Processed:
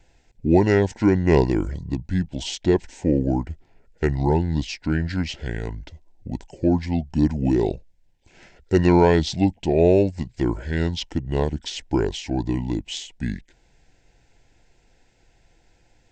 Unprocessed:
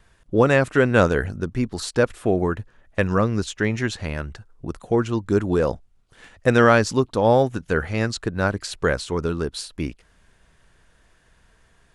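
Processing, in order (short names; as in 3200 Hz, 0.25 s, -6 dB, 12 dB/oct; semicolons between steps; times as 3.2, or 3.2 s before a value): Butterworth band-stop 1600 Hz, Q 2; speed mistake 45 rpm record played at 33 rpm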